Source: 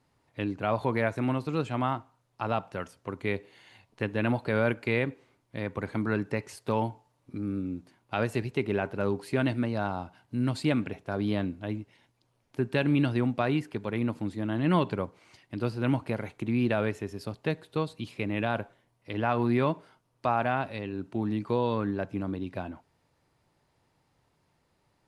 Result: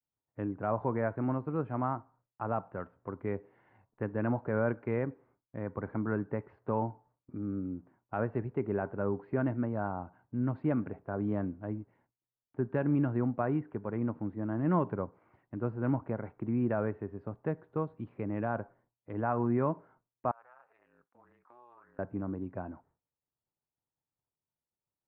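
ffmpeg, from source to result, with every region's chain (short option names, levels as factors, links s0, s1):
-filter_complex "[0:a]asettb=1/sr,asplit=3[s0][s1][s2];[s0]atrim=end=20.314[s3];[s1]atrim=start=20.31:end=21.99,asetpts=PTS-STARTPTS,afade=t=in:d=0.004:c=qsin,afade=t=out:st=1.676:d=0.004:c=qsin,highpass=1200,acompressor=threshold=0.00282:ratio=3:attack=3.2:release=140:knee=1:detection=peak,aeval=exprs='val(0)*sin(2*PI*120*n/s)':c=same[s4];[s2]atrim=start=21.986[s5];[s3][s4]acrossfade=d=0.004:c1=hsin:c2=qsin[s6];[s6][s5]acrossfade=d=0.004:c1=qsin:c2=hsin,agate=range=0.0224:threshold=0.00158:ratio=3:detection=peak,lowpass=f=1500:w=0.5412,lowpass=f=1500:w=1.3066,volume=0.668"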